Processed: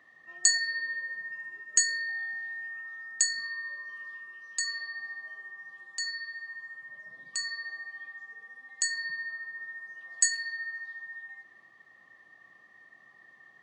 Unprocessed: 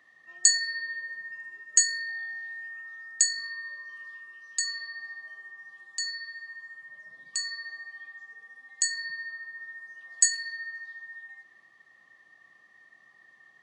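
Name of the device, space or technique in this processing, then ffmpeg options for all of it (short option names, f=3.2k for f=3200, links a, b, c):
behind a face mask: -af "highshelf=f=2.4k:g=-8,volume=4dB"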